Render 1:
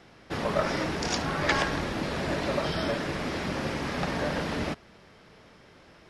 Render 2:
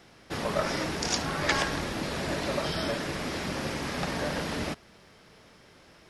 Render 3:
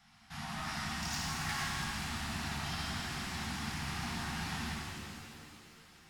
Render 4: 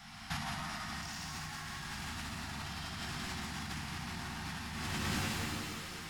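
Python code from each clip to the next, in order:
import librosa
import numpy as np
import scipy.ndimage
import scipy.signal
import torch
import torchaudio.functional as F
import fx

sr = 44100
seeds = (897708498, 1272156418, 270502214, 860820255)

y1 = fx.high_shelf(x, sr, hz=5700.0, db=10.5)
y1 = y1 * librosa.db_to_amplitude(-2.0)
y2 = 10.0 ** (-26.5 / 20.0) * np.tanh(y1 / 10.0 ** (-26.5 / 20.0))
y2 = scipy.signal.sosfilt(scipy.signal.ellip(3, 1.0, 40, [240.0, 750.0], 'bandstop', fs=sr, output='sos'), y2)
y2 = fx.rev_shimmer(y2, sr, seeds[0], rt60_s=2.6, semitones=7, shimmer_db=-8, drr_db=-4.0)
y2 = y2 * librosa.db_to_amplitude(-9.0)
y3 = fx.over_compress(y2, sr, threshold_db=-47.0, ratio=-1.0)
y3 = y3 + 10.0 ** (-5.0 / 20.0) * np.pad(y3, (int(174 * sr / 1000.0), 0))[:len(y3)]
y3 = y3 * librosa.db_to_amplitude(5.0)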